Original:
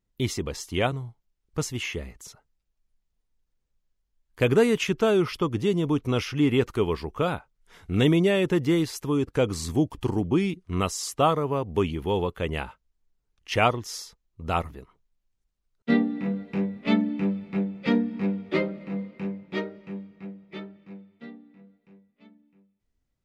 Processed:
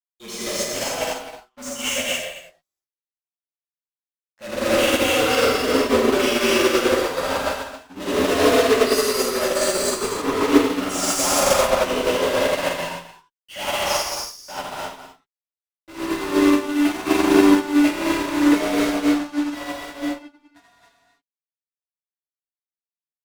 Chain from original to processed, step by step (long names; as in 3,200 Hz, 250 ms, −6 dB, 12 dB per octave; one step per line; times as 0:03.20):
noise reduction from a noise print of the clip's start 30 dB
parametric band 69 Hz −8 dB 2.1 octaves
frequency shifter +96 Hz
fuzz pedal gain 48 dB, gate −47 dBFS
multi-tap delay 66/79/206/219/265 ms −18.5/−4/−18/−8.5/−3 dB
reverb whose tail is shaped and stops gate 330 ms flat, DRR −5.5 dB
expander for the loud parts 2.5 to 1, over −21 dBFS
level −7.5 dB